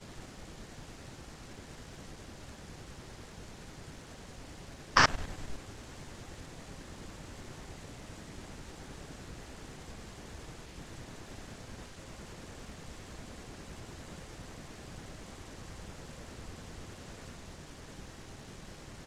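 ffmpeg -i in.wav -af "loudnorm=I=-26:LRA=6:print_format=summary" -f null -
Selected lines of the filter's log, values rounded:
Input Integrated:    -41.7 LUFS
Input True Peak:      -5.9 dBTP
Input LRA:            14.4 LU
Input Threshold:     -51.7 LUFS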